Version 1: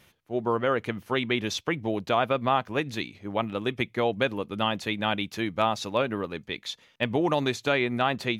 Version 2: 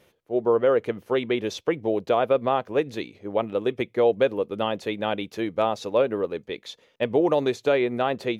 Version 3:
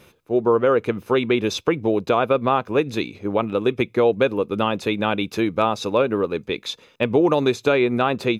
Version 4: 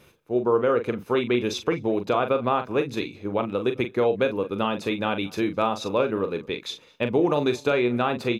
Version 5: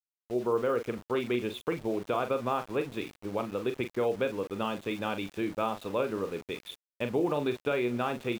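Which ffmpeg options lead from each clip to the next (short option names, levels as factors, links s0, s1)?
-af "equalizer=f=470:w=1.2:g=13,volume=0.596"
-filter_complex "[0:a]asplit=2[s0][s1];[s1]acompressor=threshold=0.0316:ratio=6,volume=1.12[s2];[s0][s2]amix=inputs=2:normalize=0,aecho=1:1:0.8:0.39,volume=1.33"
-filter_complex "[0:a]asplit=2[s0][s1];[s1]adelay=41,volume=0.376[s2];[s0][s2]amix=inputs=2:normalize=0,asplit=2[s3][s4];[s4]adelay=209.9,volume=0.0562,highshelf=f=4000:g=-4.72[s5];[s3][s5]amix=inputs=2:normalize=0,volume=0.596"
-af "aresample=8000,aresample=44100,aeval=exprs='val(0)*gte(abs(val(0)),0.015)':c=same,volume=0.447"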